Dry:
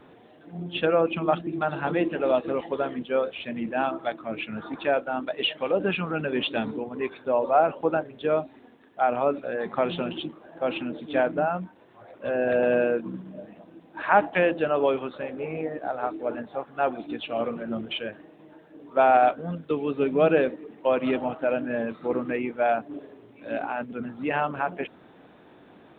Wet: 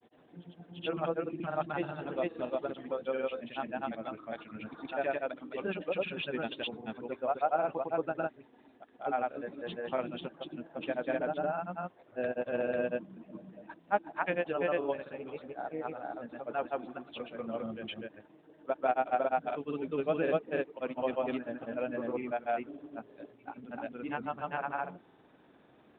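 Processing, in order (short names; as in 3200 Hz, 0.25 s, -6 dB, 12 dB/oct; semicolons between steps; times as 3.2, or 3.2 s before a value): grains, spray 0.308 s, pitch spread up and down by 0 st; gain -8 dB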